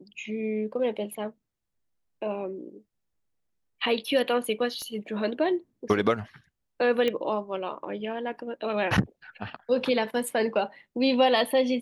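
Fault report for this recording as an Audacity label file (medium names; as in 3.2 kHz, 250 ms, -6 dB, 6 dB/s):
4.820000	4.820000	pop -27 dBFS
7.080000	7.080000	pop -15 dBFS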